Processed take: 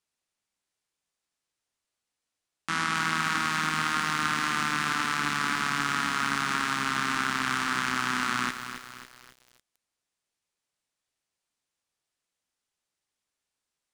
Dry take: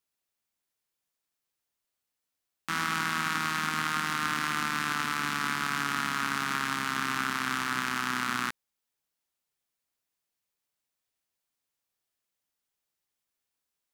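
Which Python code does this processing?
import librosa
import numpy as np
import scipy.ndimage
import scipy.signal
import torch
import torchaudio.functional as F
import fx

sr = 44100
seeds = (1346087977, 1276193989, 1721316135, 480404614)

y = scipy.signal.sosfilt(scipy.signal.butter(4, 10000.0, 'lowpass', fs=sr, output='sos'), x)
y = fx.echo_crushed(y, sr, ms=273, feedback_pct=55, bits=7, wet_db=-9.0)
y = F.gain(torch.from_numpy(y), 2.0).numpy()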